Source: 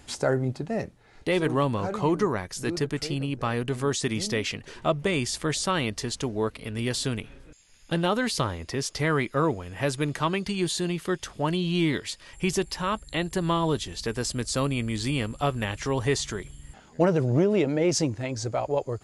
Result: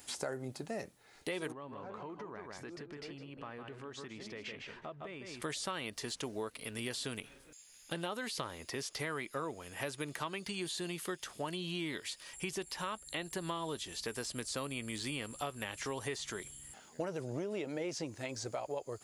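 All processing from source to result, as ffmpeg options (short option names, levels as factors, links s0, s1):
-filter_complex "[0:a]asettb=1/sr,asplit=3[s0][s1][s2];[s0]atrim=end=1.524[s3];[s1]atrim=start=1.52:end=5.42,asetpts=PTS-STARTPTS,afade=t=in:d=0.004:c=qsin,afade=t=out:st=3.896:d=0.004:c=qsin,lowpass=2200,aecho=1:1:157:0.376,atrim=end_sample=171990,acompressor=threshold=0.02:ratio=8:attack=3.2:release=140:knee=1:detection=peak[s4];[s2]atrim=start=5.416[s5];[s3][s4]acrossfade=d=0.004:c1=hsin:c2=qsin[s6];[s6][s5]acrossfade=d=0.004:c1=qsin:c2=hsin,acrossover=split=3700[s7][s8];[s8]acompressor=threshold=0.00631:ratio=4:attack=1:release=60[s9];[s7][s9]amix=inputs=2:normalize=0,aemphasis=mode=production:type=bsi,acompressor=threshold=0.0316:ratio=5,volume=0.531"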